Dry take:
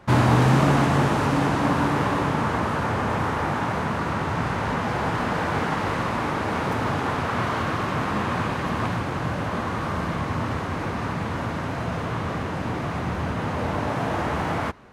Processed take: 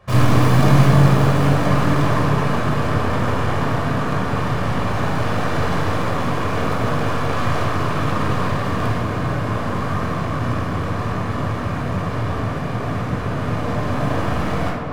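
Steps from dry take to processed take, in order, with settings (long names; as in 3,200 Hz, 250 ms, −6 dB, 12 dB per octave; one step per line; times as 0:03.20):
stylus tracing distortion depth 0.23 ms
on a send: tape delay 249 ms, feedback 87%, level −7 dB, low-pass 2,800 Hz
on the sum: rectangular room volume 2,800 cubic metres, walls furnished, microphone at 5.8 metres
level −4.5 dB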